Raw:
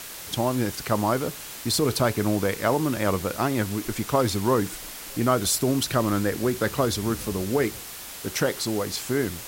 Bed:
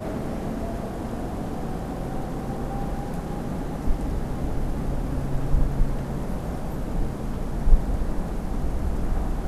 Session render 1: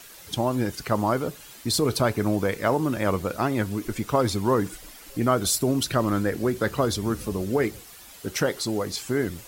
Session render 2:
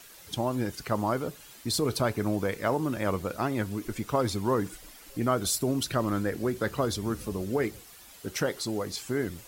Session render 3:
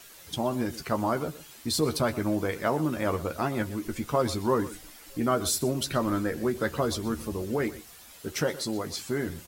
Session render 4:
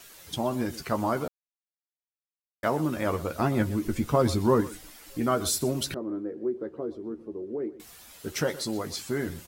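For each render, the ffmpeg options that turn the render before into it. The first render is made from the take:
-af "afftdn=nr=10:nf=-39"
-af "volume=-4.5dB"
-filter_complex "[0:a]asplit=2[a][b];[b]adelay=13,volume=-7dB[c];[a][c]amix=inputs=2:normalize=0,asplit=2[d][e];[e]adelay=122.4,volume=-17dB,highshelf=f=4k:g=-2.76[f];[d][f]amix=inputs=2:normalize=0"
-filter_complex "[0:a]asettb=1/sr,asplit=3[a][b][c];[a]atrim=end=3.394[d];[b]atrim=start=3.39:end=4.61,asetpts=PTS-STARTPTS,afade=t=in:d=0.004:c=qsin,afade=t=out:st=1.216:d=0.004:c=qsin,lowshelf=f=370:g=7[e];[c]atrim=start=4.606[f];[d][e]acrossfade=d=0.004:c1=hsin:c2=qsin[g];[g][f]acrossfade=d=0.004:c1=qsin:c2=hsin,asettb=1/sr,asplit=3[h][i][j];[h]atrim=end=5.944[k];[i]atrim=start=5.94:end=7.8,asetpts=PTS-STARTPTS,afade=t=in:d=0.004:c=qsin,afade=t=out:st=1.856:d=0.004:c=qsin,bandpass=f=360:t=q:w=2.8[l];[j]atrim=start=7.796[m];[k][l]acrossfade=d=0.004:c1=hsin:c2=qsin[n];[n][m]acrossfade=d=0.004:c1=qsin:c2=hsin,asplit=3[o][p][q];[o]atrim=end=1.28,asetpts=PTS-STARTPTS,afade=t=out:st=1.276:d=0.004:c=hsin[r];[p]atrim=start=1.28:end=2.63,asetpts=PTS-STARTPTS,volume=0[s];[q]atrim=start=2.63,asetpts=PTS-STARTPTS,afade=t=in:d=0.004:c=hsin[t];[r][s][t]concat=n=3:v=0:a=1"

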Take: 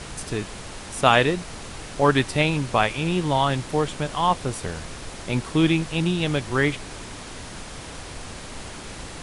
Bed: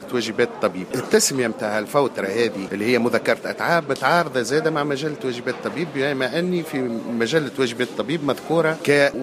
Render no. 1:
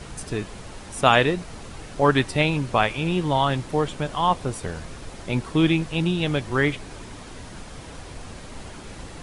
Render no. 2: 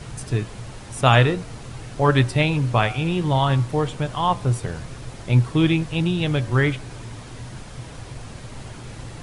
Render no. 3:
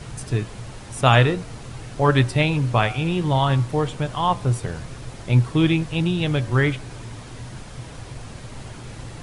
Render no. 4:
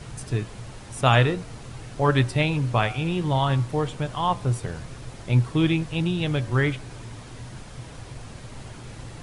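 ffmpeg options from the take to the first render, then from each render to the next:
-af "afftdn=nr=6:nf=-38"
-af "equalizer=f=120:t=o:w=0.37:g=14,bandreject=f=93.86:t=h:w=4,bandreject=f=187.72:t=h:w=4,bandreject=f=281.58:t=h:w=4,bandreject=f=375.44:t=h:w=4,bandreject=f=469.3:t=h:w=4,bandreject=f=563.16:t=h:w=4,bandreject=f=657.02:t=h:w=4,bandreject=f=750.88:t=h:w=4,bandreject=f=844.74:t=h:w=4,bandreject=f=938.6:t=h:w=4,bandreject=f=1.03246k:t=h:w=4,bandreject=f=1.12632k:t=h:w=4,bandreject=f=1.22018k:t=h:w=4,bandreject=f=1.31404k:t=h:w=4,bandreject=f=1.4079k:t=h:w=4,bandreject=f=1.50176k:t=h:w=4,bandreject=f=1.59562k:t=h:w=4"
-af anull
-af "volume=-3dB"

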